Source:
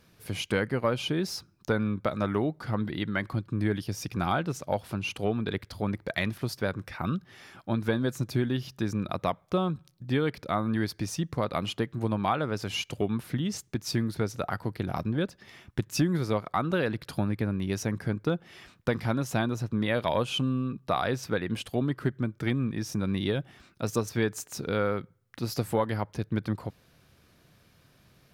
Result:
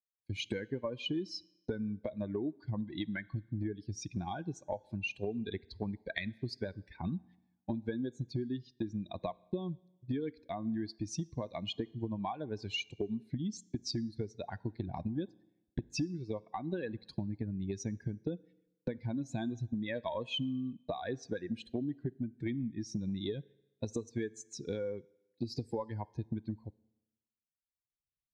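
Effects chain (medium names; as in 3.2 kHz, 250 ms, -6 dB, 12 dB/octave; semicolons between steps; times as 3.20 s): expander on every frequency bin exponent 2; recorder AGC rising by 12 dB/s; gate -52 dBFS, range -25 dB; low-pass 6.2 kHz 24 dB/octave; peaking EQ 310 Hz +10 dB 0.57 oct; compression, threshold -33 dBFS, peak gain reduction 17 dB; Butterworth band-stop 1.3 kHz, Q 3.1; on a send: reverberation RT60 1.0 s, pre-delay 8 ms, DRR 21.5 dB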